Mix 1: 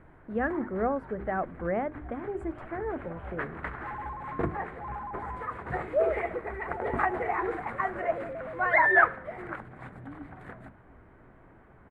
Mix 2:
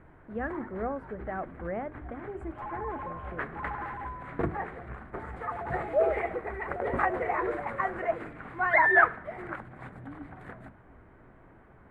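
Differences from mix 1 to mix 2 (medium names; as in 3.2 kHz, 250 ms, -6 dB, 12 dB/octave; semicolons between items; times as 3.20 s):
speech -5.0 dB; second sound: entry -1.25 s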